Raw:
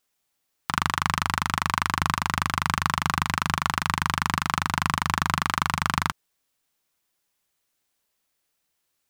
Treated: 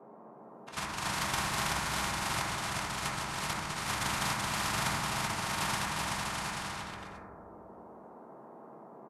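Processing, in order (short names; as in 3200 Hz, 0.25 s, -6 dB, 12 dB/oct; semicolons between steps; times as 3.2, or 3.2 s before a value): inharmonic rescaling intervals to 90%; expander -21 dBFS; auto swell 0.394 s; AGC gain up to 9 dB; transient shaper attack +8 dB, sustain +2 dB; band noise 190–900 Hz -63 dBFS; bouncing-ball echo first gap 0.38 s, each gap 0.7×, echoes 5; reverb RT60 1.4 s, pre-delay 4 ms, DRR -2.5 dB; spectral compressor 2:1; gain -8.5 dB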